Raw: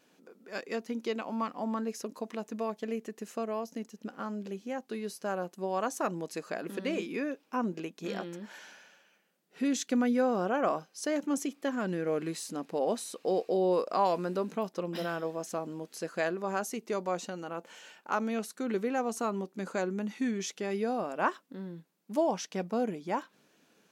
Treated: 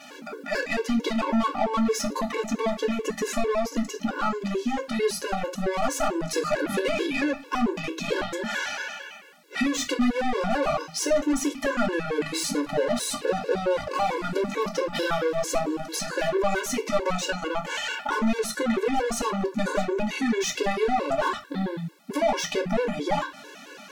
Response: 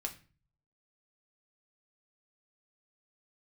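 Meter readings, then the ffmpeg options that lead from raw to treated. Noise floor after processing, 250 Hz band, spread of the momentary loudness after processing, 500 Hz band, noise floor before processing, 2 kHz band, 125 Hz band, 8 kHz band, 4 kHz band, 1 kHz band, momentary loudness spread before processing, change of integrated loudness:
-45 dBFS, +6.0 dB, 5 LU, +6.5 dB, -68 dBFS, +10.5 dB, +6.5 dB, +10.0 dB, +13.0 dB, +6.5 dB, 11 LU, +6.5 dB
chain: -filter_complex "[0:a]asplit=2[a][b];[b]highpass=f=720:p=1,volume=29dB,asoftclip=type=tanh:threshold=-14.5dB[c];[a][c]amix=inputs=2:normalize=0,lowpass=f=3.7k:p=1,volume=-6dB,acompressor=threshold=-28dB:ratio=5[d];[1:a]atrim=start_sample=2205,atrim=end_sample=6174[e];[d][e]afir=irnorm=-1:irlink=0,afftfilt=real='re*gt(sin(2*PI*4.5*pts/sr)*(1-2*mod(floor(b*sr/1024/290),2)),0)':imag='im*gt(sin(2*PI*4.5*pts/sr)*(1-2*mod(floor(b*sr/1024/290),2)),0)':win_size=1024:overlap=0.75,volume=7dB"

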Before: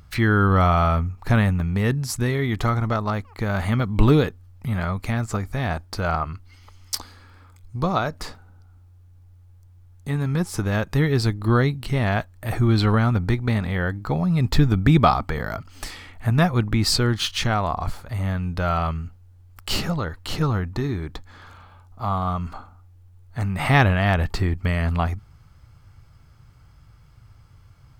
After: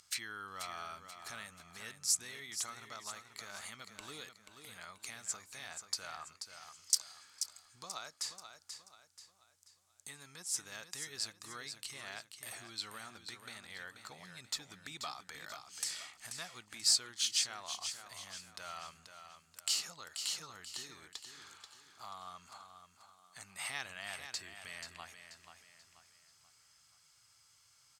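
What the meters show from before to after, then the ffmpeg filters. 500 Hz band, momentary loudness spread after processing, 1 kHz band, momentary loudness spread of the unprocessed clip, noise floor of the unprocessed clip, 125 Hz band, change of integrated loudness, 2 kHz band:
-29.5 dB, 20 LU, -23.5 dB, 13 LU, -51 dBFS, under -40 dB, -17.5 dB, -18.0 dB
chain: -af "acompressor=threshold=-35dB:ratio=2,bandpass=f=7.4k:t=q:w=1.7:csg=0,aecho=1:1:484|968|1452|1936:0.376|0.147|0.0572|0.0223,volume=8dB"

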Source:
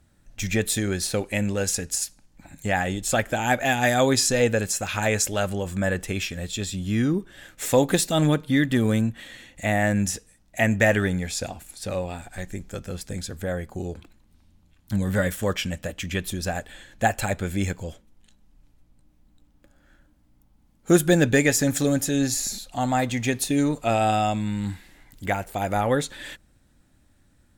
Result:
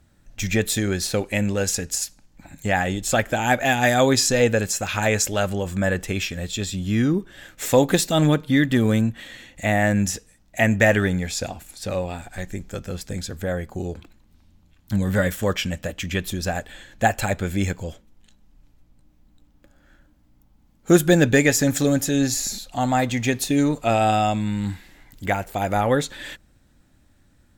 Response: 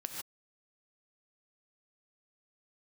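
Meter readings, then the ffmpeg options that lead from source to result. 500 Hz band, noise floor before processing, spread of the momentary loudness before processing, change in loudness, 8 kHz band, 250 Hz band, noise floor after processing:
+2.5 dB, -61 dBFS, 14 LU, +2.5 dB, +1.0 dB, +2.5 dB, -58 dBFS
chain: -af "equalizer=f=9.5k:w=3.6:g=-6.5,volume=2.5dB"

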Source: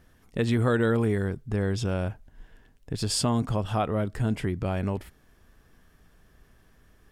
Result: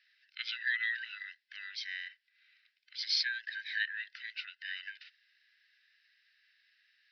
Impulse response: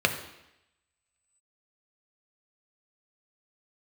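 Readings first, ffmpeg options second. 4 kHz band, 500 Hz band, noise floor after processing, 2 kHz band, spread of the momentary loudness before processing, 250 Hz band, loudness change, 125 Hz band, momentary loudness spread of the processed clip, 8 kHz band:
+1.0 dB, under -40 dB, -78 dBFS, +3.0 dB, 10 LU, under -40 dB, -9.0 dB, under -40 dB, 16 LU, -16.5 dB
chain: -af "afftfilt=real='real(if(lt(b,1008),b+24*(1-2*mod(floor(b/24),2)),b),0)':imag='imag(if(lt(b,1008),b+24*(1-2*mod(floor(b/24),2)),b),0)':win_size=2048:overlap=0.75,asuperpass=centerf=2900:order=20:qfactor=0.76,volume=1.5dB"

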